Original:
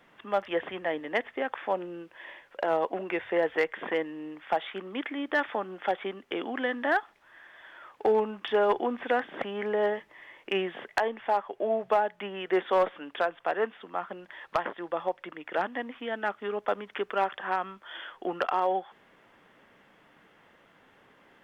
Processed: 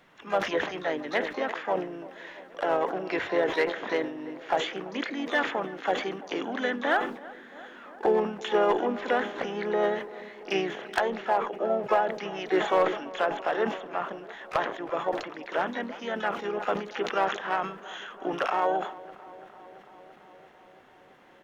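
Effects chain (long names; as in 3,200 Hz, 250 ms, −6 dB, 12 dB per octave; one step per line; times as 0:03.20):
pitch-shifted copies added −3 semitones −9 dB, +3 semitones −16 dB, +12 semitones −14 dB
feedback echo with a low-pass in the loop 337 ms, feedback 80%, low-pass 2,200 Hz, level −19 dB
level that may fall only so fast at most 96 dB per second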